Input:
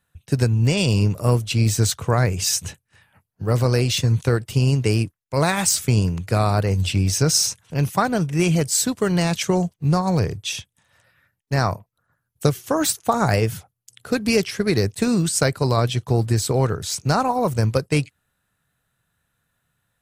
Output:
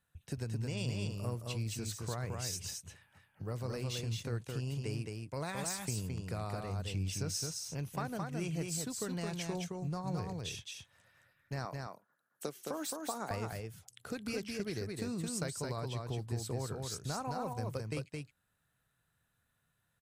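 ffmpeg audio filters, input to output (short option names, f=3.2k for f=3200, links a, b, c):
-filter_complex "[0:a]asettb=1/sr,asplit=3[a][b][c];[a]atrim=end=11.654[d];[b]atrim=start=11.65:end=13.31,asetpts=PTS-STARTPTS,afade=t=in:d=0.004:c=qsin,afade=t=out:st=1.656:d=0.004:c=qsin,highpass=f=210:w=0.5412,highpass=f=210:w=1.3066[e];[c]atrim=start=13.306[f];[d][e]acrossfade=d=0.004:c1=hsin:c2=qsin[g];[g][f]acrossfade=d=0.004:c1=qsin:c2=hsin,acompressor=threshold=-37dB:ratio=2,aecho=1:1:217:0.668,volume=-8.5dB"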